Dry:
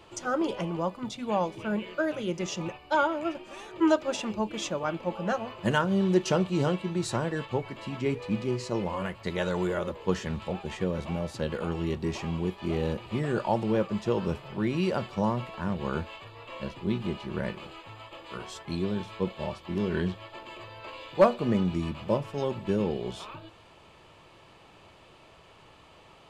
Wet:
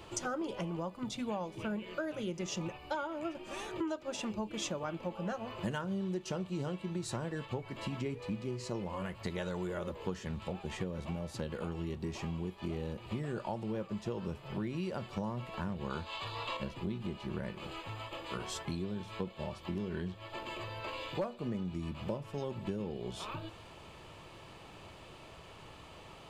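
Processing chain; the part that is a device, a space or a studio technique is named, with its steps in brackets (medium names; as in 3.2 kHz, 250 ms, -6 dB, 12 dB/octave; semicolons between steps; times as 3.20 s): 15.90–16.57 s: graphic EQ 1/4/8 kHz +8/+11/+4 dB; ASMR close-microphone chain (bass shelf 240 Hz +4.5 dB; compression 6:1, threshold -36 dBFS, peak gain reduction 21 dB; treble shelf 7.2 kHz +5.5 dB); trim +1 dB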